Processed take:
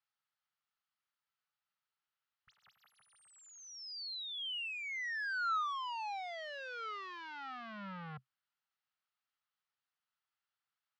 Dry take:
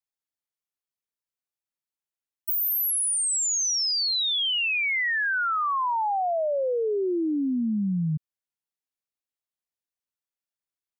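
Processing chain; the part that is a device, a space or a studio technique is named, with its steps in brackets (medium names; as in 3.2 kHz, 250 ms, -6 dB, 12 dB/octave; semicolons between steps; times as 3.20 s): scooped metal amplifier (valve stage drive 45 dB, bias 0.3; cabinet simulation 110–3800 Hz, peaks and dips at 130 Hz +8 dB, 200 Hz +7 dB, 810 Hz +5 dB, 1.3 kHz +9 dB, 2.4 kHz -5 dB, 3.6 kHz -5 dB; amplifier tone stack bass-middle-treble 10-0-10); trim +11.5 dB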